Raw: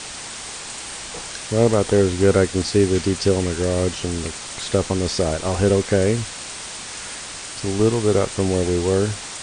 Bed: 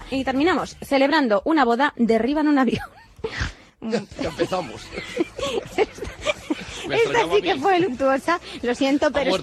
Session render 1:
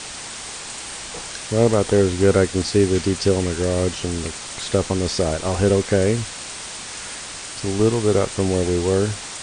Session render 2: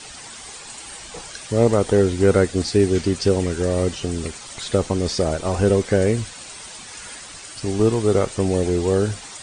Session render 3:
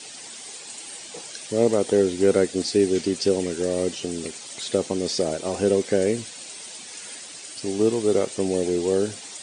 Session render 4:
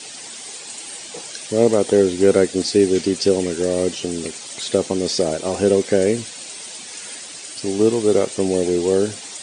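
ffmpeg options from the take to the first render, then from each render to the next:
-af anull
-af "afftdn=nr=9:nf=-34"
-af "highpass=240,equalizer=f=1.2k:t=o:w=1.4:g=-9"
-af "volume=4.5dB"

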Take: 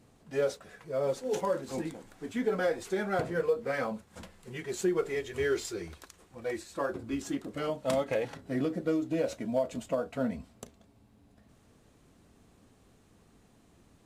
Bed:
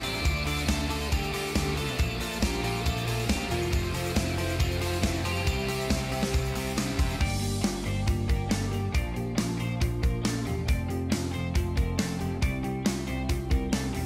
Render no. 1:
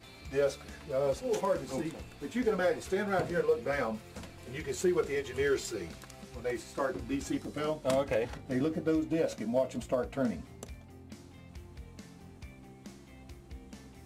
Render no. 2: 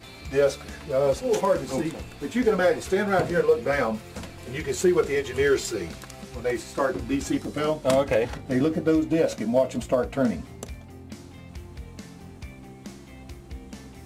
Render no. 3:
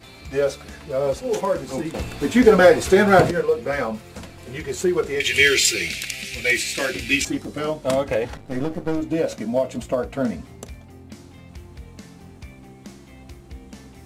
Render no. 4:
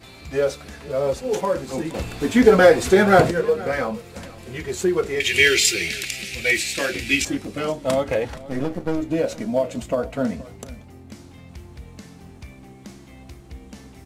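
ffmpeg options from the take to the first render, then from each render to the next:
-filter_complex "[1:a]volume=-21.5dB[a];[0:a][a]amix=inputs=2:normalize=0"
-af "volume=8dB"
-filter_complex "[0:a]asettb=1/sr,asplit=3[a][b][c];[a]atrim=end=5.204[d];[b]atrim=start=5.2:end=7.25,asetpts=PTS-STARTPTS,afade=t=in:d=0.004:c=qsin,afade=t=out:st=2.046:d=0.004:c=qsin,highshelf=f=1.6k:t=q:w=3:g=13.5[e];[c]atrim=start=7.246[f];[d][e]acrossfade=d=0.004:c1=hsin:c2=qsin[g];[g][f]acrossfade=d=0.004:c1=qsin:c2=hsin,asettb=1/sr,asplit=3[h][i][j];[h]atrim=end=8.364[k];[i]atrim=start=8.36:end=9.01,asetpts=PTS-STARTPTS,afade=t=in:d=0.004:c=qsin,afade=t=out:st=0.646:d=0.004:c=qsin,aeval=exprs='if(lt(val(0),0),0.251*val(0),val(0))':c=same[l];[j]atrim=start=9.006[m];[k][l]acrossfade=d=0.004:c1=hsin:c2=qsin[n];[n][m]acrossfade=d=0.004:c1=qsin:c2=hsin,asplit=3[o][p][q];[o]atrim=end=1.942[r];[p]atrim=start=1.938:end=3.312,asetpts=PTS-STARTPTS,volume=9dB[s];[q]atrim=start=3.308[t];[r][s]acrossfade=d=0.004:c1=hsin:c2=hsin[u];[u][t]acrossfade=d=0.004:c1=hsin:c2=hsin"
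-af "aecho=1:1:473:0.1"

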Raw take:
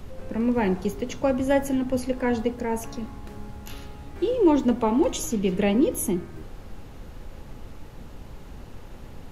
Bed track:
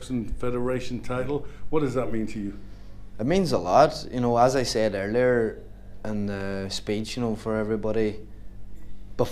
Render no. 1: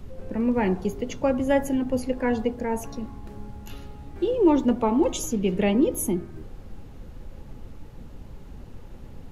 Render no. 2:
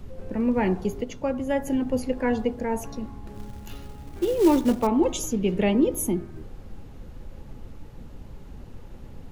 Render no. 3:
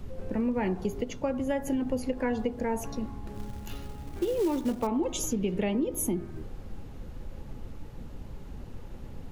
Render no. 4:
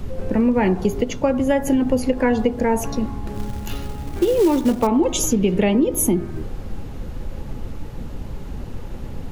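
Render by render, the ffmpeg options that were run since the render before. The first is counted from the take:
-af "afftdn=nr=6:nf=-42"
-filter_complex "[0:a]asettb=1/sr,asplit=3[a][b][c];[a]atrim=end=3.344[d];[b]atrim=start=3.34:end=4.87,asetpts=PTS-STARTPTS,afade=t=in:d=0.004:c=qsin,afade=t=out:st=1.526:d=0.004:c=qsin,acrusher=bits=5:mode=log:mix=0:aa=0.000001[e];[c]atrim=start=4.866[f];[d][e]acrossfade=d=0.004:c1=hsin:c2=qsin[g];[g][f]acrossfade=d=0.004:c1=qsin:c2=hsin,asplit=3[h][i][j];[h]atrim=end=1.042[k];[i]atrim=start=1.038:end=1.672,asetpts=PTS-STARTPTS,volume=-4dB[l];[j]atrim=start=1.668[m];[k][l]acrossfade=d=0.004:c1=hsin:c2=hsin[n];[n][m]acrossfade=d=0.004:c1=hsin:c2=hsin"
-af "acompressor=threshold=-25dB:ratio=6"
-af "volume=11dB"

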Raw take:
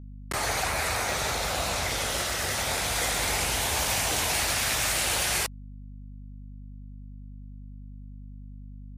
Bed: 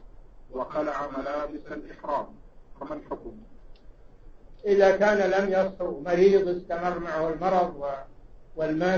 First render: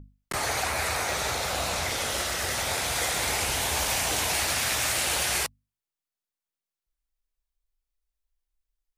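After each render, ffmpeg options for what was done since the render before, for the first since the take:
-af "bandreject=f=50:t=h:w=6,bandreject=f=100:t=h:w=6,bandreject=f=150:t=h:w=6,bandreject=f=200:t=h:w=6,bandreject=f=250:t=h:w=6"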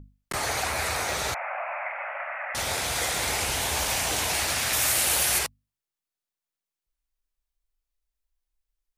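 -filter_complex "[0:a]asettb=1/sr,asplit=3[a][b][c];[a]atrim=end=1.344[d];[b]atrim=start=1.34:end=2.55,asetpts=PTS-STARTPTS,afade=t=in:d=0.004:c=qsin,afade=t=out:st=1.206:d=0.004:c=qsin,asuperpass=centerf=1200:order=20:qfactor=0.62[e];[c]atrim=start=2.546[f];[d][e]acrossfade=d=0.004:c1=hsin:c2=qsin[g];[g][f]acrossfade=d=0.004:c1=qsin:c2=hsin,asettb=1/sr,asplit=3[h][i][j];[h]atrim=end=4.734[k];[i]atrim=start=4.73:end=5.39,asetpts=PTS-STARTPTS,afade=t=in:d=0.004:c=qsin,afade=t=out:st=0.656:d=0.004:c=qsin,equalizer=f=13k:w=0.74:g=9[l];[j]atrim=start=5.386[m];[k][l]acrossfade=d=0.004:c1=hsin:c2=qsin[n];[n][m]acrossfade=d=0.004:c1=qsin:c2=hsin"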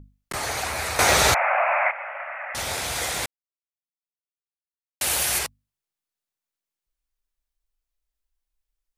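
-filter_complex "[0:a]asplit=5[a][b][c][d][e];[a]atrim=end=0.992[f];[b]atrim=start=0.988:end=1.912,asetpts=PTS-STARTPTS,volume=11dB[g];[c]atrim=start=1.908:end=3.26,asetpts=PTS-STARTPTS,afade=t=out:st=1.348:d=0.004:c=hsin[h];[d]atrim=start=3.26:end=5.01,asetpts=PTS-STARTPTS,volume=0[i];[e]atrim=start=5.01,asetpts=PTS-STARTPTS,afade=t=in:d=0.004:c=hsin[j];[f][g]acrossfade=d=0.004:c1=hsin:c2=hsin[k];[h][i][j]concat=n=3:v=0:a=1[l];[k][l]acrossfade=d=0.004:c1=hsin:c2=hsin"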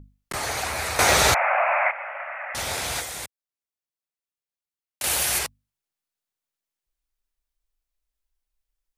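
-filter_complex "[0:a]asettb=1/sr,asplit=3[a][b][c];[a]atrim=end=3.004[d];[b]atrim=start=3:end=5.04,asetpts=PTS-STARTPTS,afade=t=in:d=0.004:c=qsin,afade=t=out:st=2.036:d=0.004:c=qsin,acrossover=split=89|6400[e][f][g];[e]acompressor=threshold=-51dB:ratio=4[h];[f]acompressor=threshold=-36dB:ratio=4[i];[g]acompressor=threshold=-35dB:ratio=4[j];[h][i][j]amix=inputs=3:normalize=0[k];[c]atrim=start=5.036[l];[d][k]acrossfade=d=0.004:c1=hsin:c2=qsin[m];[m][l]acrossfade=d=0.004:c1=qsin:c2=hsin"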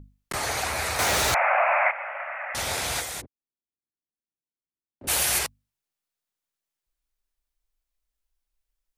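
-filter_complex "[0:a]asettb=1/sr,asplit=3[a][b][c];[a]atrim=end=0.914[d];[b]atrim=start=0.91:end=1.34,asetpts=PTS-STARTPTS,afade=t=in:d=0.004:c=qsin,afade=t=out:st=0.426:d=0.004:c=qsin,asoftclip=type=hard:threshold=-21dB[e];[c]atrim=start=1.336[f];[d][e]acrossfade=d=0.004:c1=hsin:c2=qsin[g];[g][f]acrossfade=d=0.004:c1=qsin:c2=hsin,asplit=3[h][i][j];[h]afade=t=out:st=3.2:d=0.02[k];[i]lowpass=f=310:t=q:w=1.7,afade=t=in:st=3.2:d=0.02,afade=t=out:st=5.07:d=0.02[l];[j]afade=t=in:st=5.07:d=0.02[m];[k][l][m]amix=inputs=3:normalize=0"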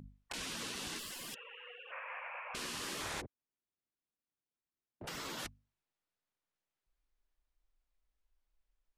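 -af "afftfilt=real='re*lt(hypot(re,im),0.0398)':imag='im*lt(hypot(re,im),0.0398)':win_size=1024:overlap=0.75,aemphasis=mode=reproduction:type=75fm"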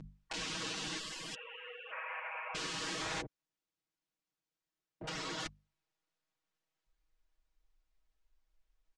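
-af "lowpass=f=7.5k:w=0.5412,lowpass=f=7.5k:w=1.3066,aecho=1:1:6.3:0.94"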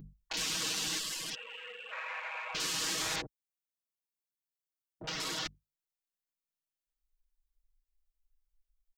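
-af "afwtdn=0.00224,aemphasis=mode=production:type=75kf"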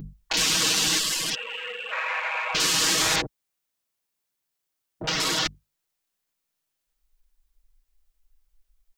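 -af "volume=12dB"

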